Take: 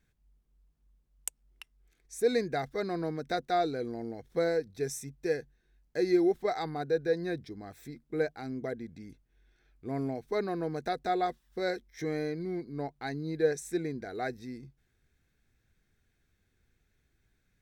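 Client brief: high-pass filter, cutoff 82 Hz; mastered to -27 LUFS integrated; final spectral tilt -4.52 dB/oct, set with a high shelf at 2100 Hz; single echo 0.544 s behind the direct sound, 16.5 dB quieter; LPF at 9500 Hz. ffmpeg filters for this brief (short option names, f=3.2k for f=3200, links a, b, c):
-af "highpass=82,lowpass=9.5k,highshelf=f=2.1k:g=6,aecho=1:1:544:0.15,volume=5.5dB"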